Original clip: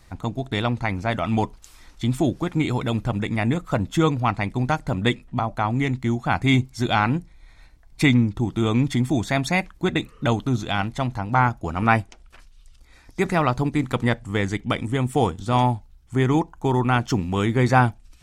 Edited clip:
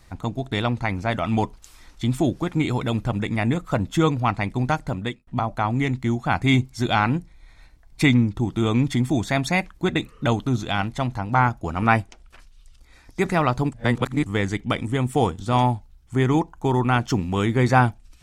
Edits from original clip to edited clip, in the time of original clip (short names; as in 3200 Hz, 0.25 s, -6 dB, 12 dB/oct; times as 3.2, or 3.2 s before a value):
4.81–5.27 fade out
13.72–14.26 reverse